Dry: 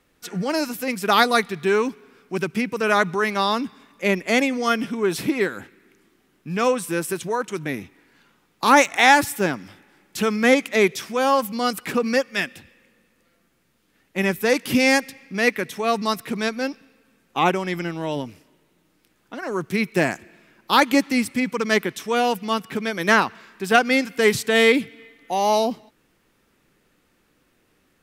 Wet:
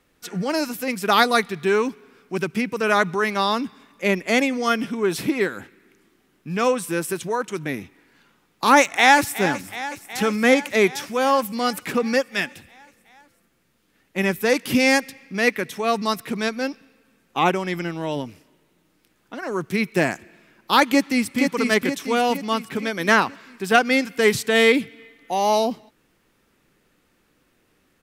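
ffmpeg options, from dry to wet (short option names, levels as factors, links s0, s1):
-filter_complex "[0:a]asplit=2[s0][s1];[s1]afade=t=in:st=8.8:d=0.01,afade=t=out:st=9.39:d=0.01,aecho=0:1:370|740|1110|1480|1850|2220|2590|2960|3330|3700|4070:0.211349|0.158512|0.118884|0.0891628|0.0668721|0.0501541|0.0376156|0.0282117|0.0211588|0.0158691|0.0119018[s2];[s0][s2]amix=inputs=2:normalize=0,asplit=2[s3][s4];[s4]afade=t=in:st=20.87:d=0.01,afade=t=out:st=21.42:d=0.01,aecho=0:1:470|940|1410|1880|2350|2820:0.595662|0.297831|0.148916|0.0744578|0.0372289|0.0186144[s5];[s3][s5]amix=inputs=2:normalize=0"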